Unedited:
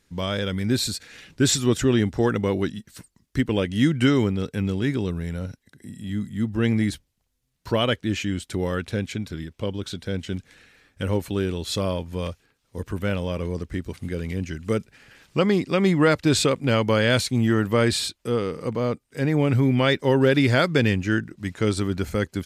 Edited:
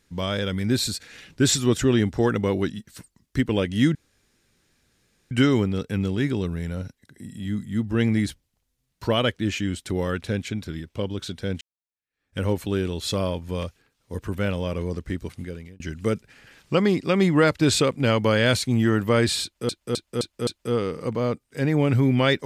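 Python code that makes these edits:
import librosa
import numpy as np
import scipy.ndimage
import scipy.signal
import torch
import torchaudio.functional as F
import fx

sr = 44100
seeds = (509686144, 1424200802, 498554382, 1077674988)

y = fx.edit(x, sr, fx.insert_room_tone(at_s=3.95, length_s=1.36),
    fx.fade_in_span(start_s=10.25, length_s=0.77, curve='exp'),
    fx.fade_out_span(start_s=13.88, length_s=0.56),
    fx.repeat(start_s=18.07, length_s=0.26, count=5), tone=tone)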